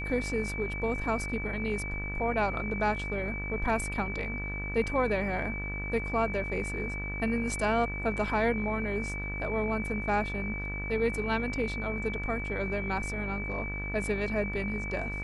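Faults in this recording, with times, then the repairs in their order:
mains buzz 50 Hz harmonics 37 −37 dBFS
whistle 2,300 Hz −36 dBFS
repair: hum removal 50 Hz, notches 37
notch filter 2,300 Hz, Q 30

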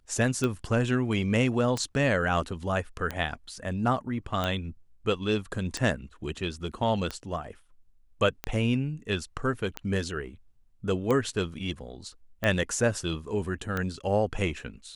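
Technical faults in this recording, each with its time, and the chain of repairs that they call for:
scratch tick 45 rpm −15 dBFS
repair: click removal

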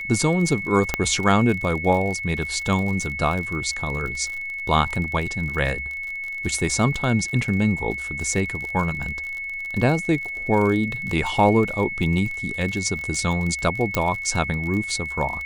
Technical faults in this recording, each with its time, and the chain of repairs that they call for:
surface crackle 41 per second −28 dBFS
whistle 2,200 Hz −28 dBFS
0:00.94: click −6 dBFS
0:13.95: click −6 dBFS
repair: click removal
notch filter 2,200 Hz, Q 30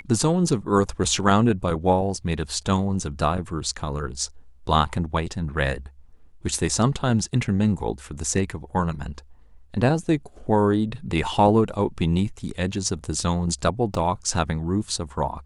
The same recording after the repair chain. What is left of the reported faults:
0:13.95: click

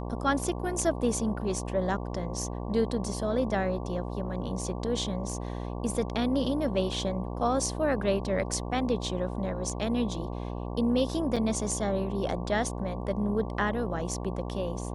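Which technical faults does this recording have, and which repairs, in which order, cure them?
mains buzz 60 Hz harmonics 19 −35 dBFS
0:11.36–0:11.37: drop-out 5.9 ms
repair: hum removal 60 Hz, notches 19
repair the gap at 0:11.36, 5.9 ms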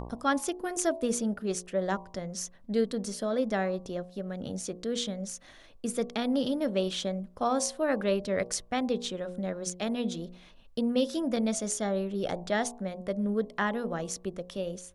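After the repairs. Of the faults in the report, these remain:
none of them is left

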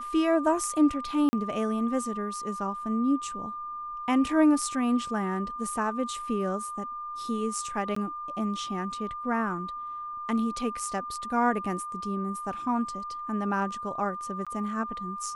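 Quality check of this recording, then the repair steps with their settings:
whistle 1,200 Hz −34 dBFS
0:01.29–0:01.33: drop-out 40 ms
0:07.95–0:07.96: drop-out 14 ms
0:14.45–0:14.47: drop-out 16 ms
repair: notch filter 1,200 Hz, Q 30
repair the gap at 0:01.29, 40 ms
repair the gap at 0:07.95, 14 ms
repair the gap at 0:14.45, 16 ms

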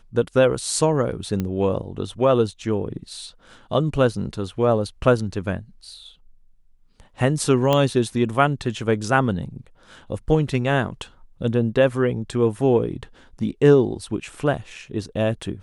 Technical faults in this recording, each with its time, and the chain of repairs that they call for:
0:01.40: click −13 dBFS
0:07.73: click −7 dBFS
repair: click removal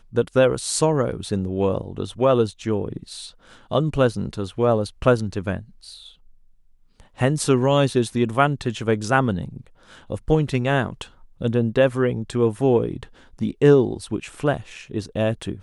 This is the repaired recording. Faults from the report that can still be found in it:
0:07.73: click

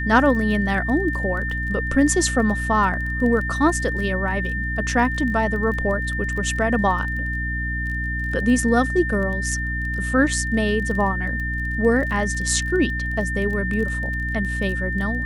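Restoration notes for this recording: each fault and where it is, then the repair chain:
surface crackle 22 per second −29 dBFS
mains hum 60 Hz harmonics 5 −27 dBFS
whistle 1,800 Hz −26 dBFS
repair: click removal
hum removal 60 Hz, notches 5
notch filter 1,800 Hz, Q 30

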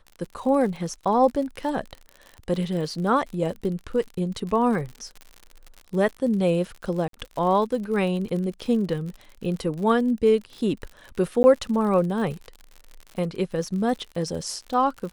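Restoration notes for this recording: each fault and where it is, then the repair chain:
surface crackle 58 per second −32 dBFS
0:07.08–0:07.13: drop-out 53 ms
0:11.43–0:11.44: drop-out 10 ms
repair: click removal
repair the gap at 0:07.08, 53 ms
repair the gap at 0:11.43, 10 ms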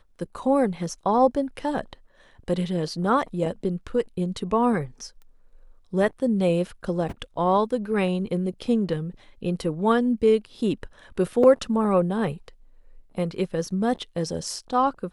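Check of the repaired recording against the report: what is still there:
none of them is left

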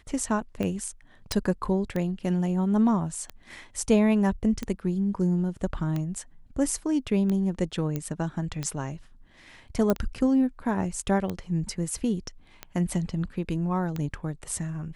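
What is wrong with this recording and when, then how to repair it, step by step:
scratch tick 45 rpm −18 dBFS
0:01.32: click −10 dBFS
0:07.96: click −17 dBFS
0:09.90: click −11 dBFS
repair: click removal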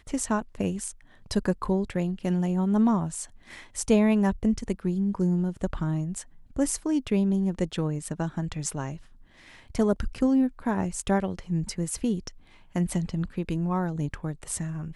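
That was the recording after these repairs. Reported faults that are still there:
none of them is left

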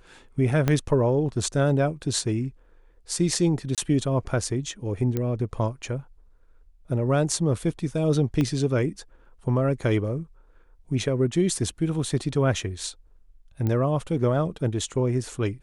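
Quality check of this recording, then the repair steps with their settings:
0:00.68: click −9 dBFS
0:03.75–0:03.78: drop-out 27 ms
0:05.17: click −14 dBFS
0:08.41: click −14 dBFS
0:13.67: click −16 dBFS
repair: click removal
repair the gap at 0:03.75, 27 ms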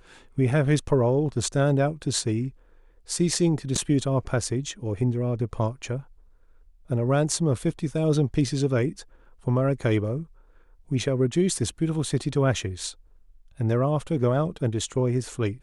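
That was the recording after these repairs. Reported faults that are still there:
0:00.68: click
0:08.41: click

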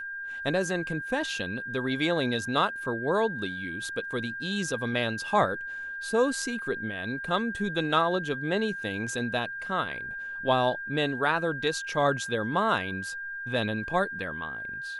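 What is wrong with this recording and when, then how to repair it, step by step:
whistle 1,600 Hz −34 dBFS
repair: notch filter 1,600 Hz, Q 30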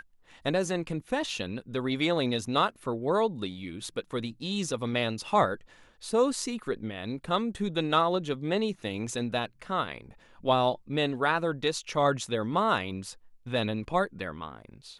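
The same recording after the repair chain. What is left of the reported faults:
none of them is left

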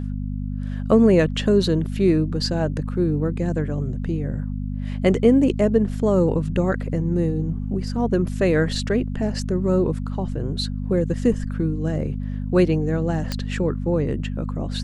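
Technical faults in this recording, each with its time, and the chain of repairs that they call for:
mains hum 50 Hz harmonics 5 −27 dBFS
0:13.32: click −11 dBFS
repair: click removal
hum removal 50 Hz, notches 5

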